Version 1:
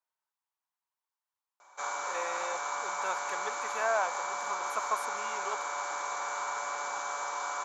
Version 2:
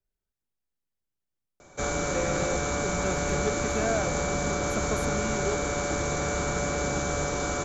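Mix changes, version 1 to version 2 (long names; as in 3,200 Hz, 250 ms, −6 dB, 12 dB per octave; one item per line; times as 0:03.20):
background +8.0 dB
master: remove high-pass with resonance 960 Hz, resonance Q 4.7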